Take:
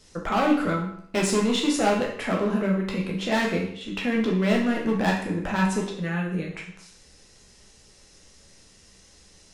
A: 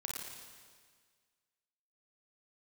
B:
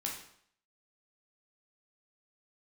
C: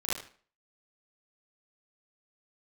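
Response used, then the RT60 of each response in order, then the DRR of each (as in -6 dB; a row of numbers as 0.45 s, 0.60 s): B; 1.7 s, 0.65 s, no single decay rate; -2.5 dB, -2.0 dB, -10.0 dB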